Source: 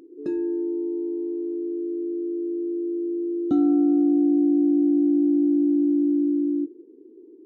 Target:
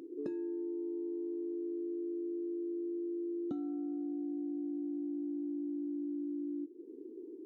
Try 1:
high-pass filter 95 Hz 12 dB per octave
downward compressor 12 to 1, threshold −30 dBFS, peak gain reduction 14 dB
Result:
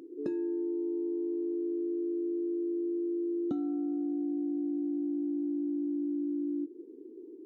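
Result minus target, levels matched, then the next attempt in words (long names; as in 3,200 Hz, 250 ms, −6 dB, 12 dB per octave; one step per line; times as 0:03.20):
downward compressor: peak gain reduction −5.5 dB
high-pass filter 95 Hz 12 dB per octave
downward compressor 12 to 1, threshold −36 dBFS, peak gain reduction 19.5 dB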